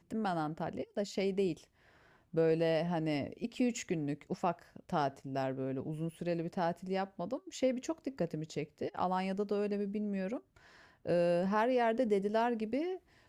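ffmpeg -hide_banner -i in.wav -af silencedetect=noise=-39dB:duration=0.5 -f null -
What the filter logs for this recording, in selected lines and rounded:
silence_start: 1.54
silence_end: 2.34 | silence_duration: 0.81
silence_start: 10.38
silence_end: 11.06 | silence_duration: 0.68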